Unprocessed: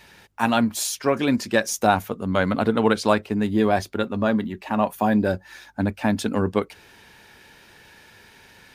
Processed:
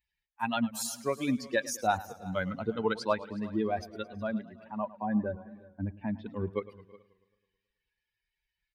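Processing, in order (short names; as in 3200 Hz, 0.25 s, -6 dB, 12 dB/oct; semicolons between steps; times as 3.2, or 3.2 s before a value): per-bin expansion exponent 2; 4.64–6.26 Gaussian blur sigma 3.3 samples; echo 0.366 s -21 dB; warbling echo 0.108 s, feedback 59%, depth 107 cents, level -18 dB; gain -6 dB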